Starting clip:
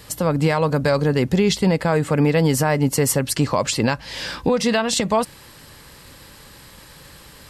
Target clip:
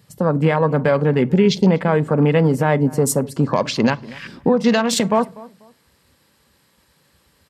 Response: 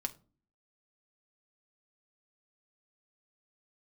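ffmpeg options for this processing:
-filter_complex "[0:a]afwtdn=0.0355,highpass=140,lowshelf=f=470:g=3,asplit=2[s0][s1];[s1]adelay=244,lowpass=f=1500:p=1,volume=0.1,asplit=2[s2][s3];[s3]adelay=244,lowpass=f=1500:p=1,volume=0.27[s4];[s0][s2][s4]amix=inputs=3:normalize=0,asplit=2[s5][s6];[1:a]atrim=start_sample=2205[s7];[s6][s7]afir=irnorm=-1:irlink=0,volume=0.631[s8];[s5][s8]amix=inputs=2:normalize=0,volume=0.708"

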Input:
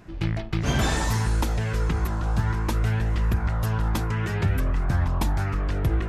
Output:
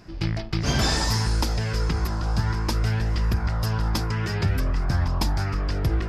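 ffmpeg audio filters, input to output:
-af "equalizer=f=5000:t=o:w=0.37:g=14.5"

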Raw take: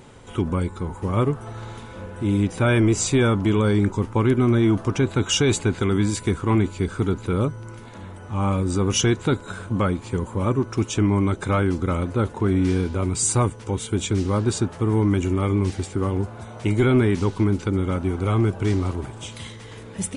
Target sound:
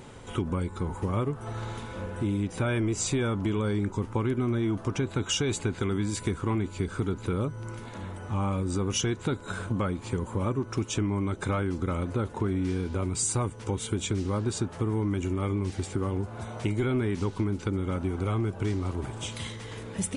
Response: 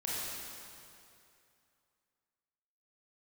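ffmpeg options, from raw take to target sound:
-af "acompressor=threshold=0.0501:ratio=4"

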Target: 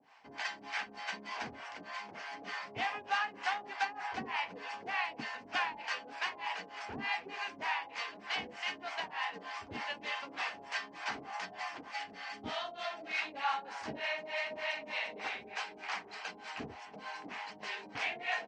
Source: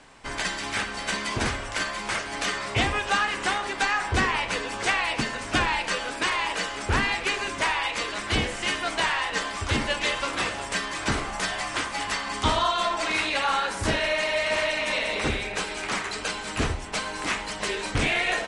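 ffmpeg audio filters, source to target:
-filter_complex "[0:a]asettb=1/sr,asplit=3[s0][s1][s2];[s0]atrim=end=11.914[s3];[s1]atrim=start=11.91:end=13.22,asetpts=PTS-STARTPTS,afade=t=in:d=0.004:c=qsin,afade=t=out:st=1.306:d=0.004:c=qsin,equalizer=f=1000:t=o:w=0.32:g=-12.5[s4];[s2]atrim=start=13.216[s5];[s3][s4]acrossfade=d=0.004:c1=hsin:c2=qsin[s6];[s6][s5]acrossfade=d=0.004:c1=qsin:c2=hsin,acrossover=split=560[s7][s8];[s7]aeval=exprs='val(0)*(1-1/2+1/2*cos(2*PI*3.3*n/s))':c=same[s9];[s8]aeval=exprs='val(0)*(1-1/2-1/2*cos(2*PI*3.3*n/s))':c=same[s10];[s9][s10]amix=inputs=2:normalize=0,highpass=260,equalizer=f=350:t=q:w=4:g=-8,equalizer=f=540:t=q:w=4:g=-7,equalizer=f=780:t=q:w=4:g=6,equalizer=f=1300:t=q:w=4:g=-4,equalizer=f=3700:t=q:w=4:g=-7,lowpass=f=5100:w=0.5412,lowpass=f=5100:w=1.3066,volume=0.473"

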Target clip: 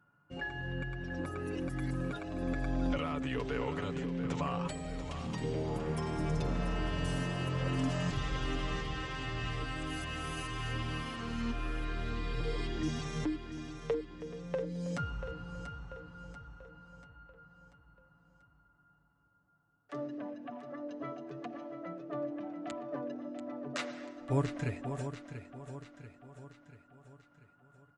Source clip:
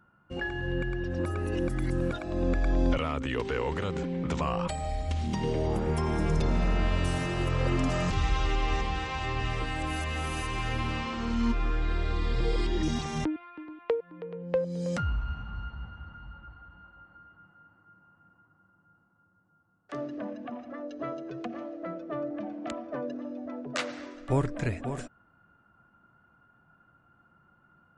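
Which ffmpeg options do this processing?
-af "highpass=40,aecho=1:1:7:0.58,aecho=1:1:688|1376|2064|2752|3440:0.316|0.158|0.0791|0.0395|0.0198,volume=0.447"

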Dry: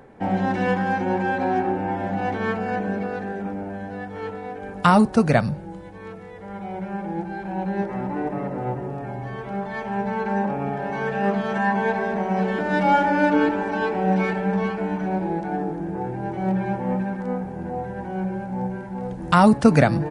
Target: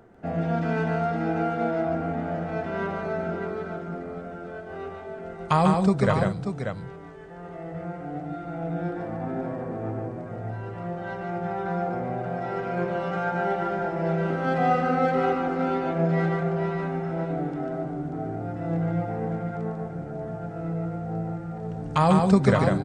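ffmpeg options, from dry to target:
-af "asetrate=38808,aresample=44100,aecho=1:1:145|192|587:0.631|0.168|0.422,volume=0.531"

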